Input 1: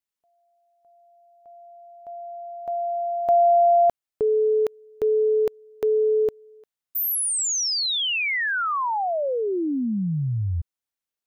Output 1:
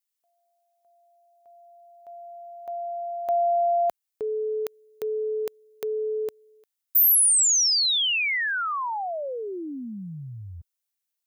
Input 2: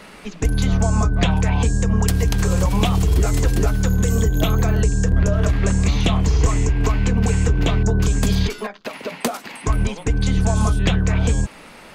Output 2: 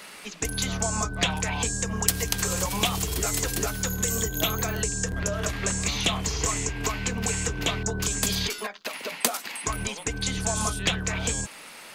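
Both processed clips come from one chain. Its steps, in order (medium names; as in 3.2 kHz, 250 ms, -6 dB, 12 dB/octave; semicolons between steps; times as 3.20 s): tilt EQ +3 dB/octave; trim -4 dB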